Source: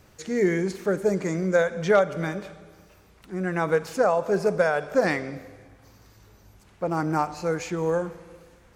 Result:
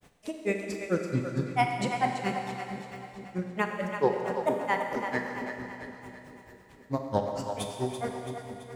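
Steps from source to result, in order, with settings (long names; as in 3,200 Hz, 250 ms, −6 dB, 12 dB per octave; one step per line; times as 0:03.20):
granular cloud 112 ms, grains 4.5 per second, spray 26 ms, pitch spread up and down by 7 semitones
echo with a time of its own for lows and highs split 440 Hz, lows 459 ms, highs 334 ms, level −8 dB
four-comb reverb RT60 2.6 s, combs from 28 ms, DRR 3.5 dB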